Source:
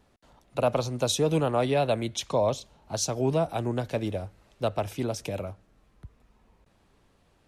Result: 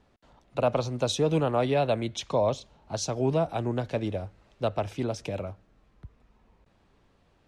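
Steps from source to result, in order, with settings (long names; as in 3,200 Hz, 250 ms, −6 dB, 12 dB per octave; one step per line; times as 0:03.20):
high-frequency loss of the air 67 metres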